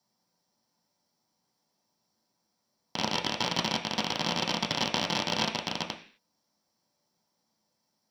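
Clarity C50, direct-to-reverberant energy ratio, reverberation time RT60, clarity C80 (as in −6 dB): 11.0 dB, 1.5 dB, 0.45 s, 15.5 dB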